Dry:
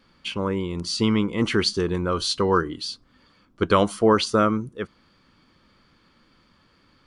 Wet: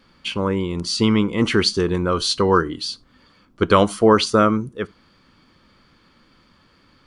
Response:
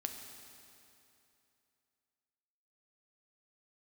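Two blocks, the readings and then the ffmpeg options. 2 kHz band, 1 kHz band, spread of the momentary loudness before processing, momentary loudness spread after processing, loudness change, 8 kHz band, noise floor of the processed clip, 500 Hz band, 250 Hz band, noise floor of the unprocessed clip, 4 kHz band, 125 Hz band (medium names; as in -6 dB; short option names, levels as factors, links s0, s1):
+4.0 dB, +4.0 dB, 13 LU, 13 LU, +4.0 dB, +4.0 dB, -57 dBFS, +4.0 dB, +4.0 dB, -61 dBFS, +4.0 dB, +4.0 dB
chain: -filter_complex "[0:a]asplit=2[s0][s1];[1:a]atrim=start_sample=2205,atrim=end_sample=3969[s2];[s1][s2]afir=irnorm=-1:irlink=0,volume=0.224[s3];[s0][s3]amix=inputs=2:normalize=0,volume=1.33"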